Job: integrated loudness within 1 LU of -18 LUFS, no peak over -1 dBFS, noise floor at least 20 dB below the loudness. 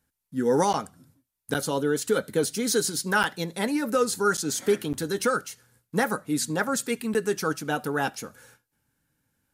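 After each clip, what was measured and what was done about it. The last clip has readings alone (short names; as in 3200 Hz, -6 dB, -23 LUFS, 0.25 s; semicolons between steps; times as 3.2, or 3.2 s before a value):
dropouts 6; longest dropout 8.7 ms; loudness -26.5 LUFS; peak -12.0 dBFS; loudness target -18.0 LUFS
-> interpolate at 0.73/1.54/3.23/4.37/4.93/7.14, 8.7 ms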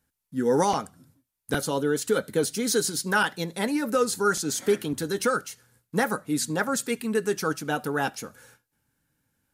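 dropouts 0; loudness -26.5 LUFS; peak -12.0 dBFS; loudness target -18.0 LUFS
-> gain +8.5 dB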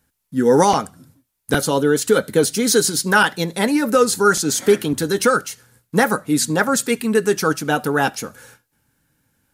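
loudness -18.0 LUFS; peak -3.5 dBFS; noise floor -74 dBFS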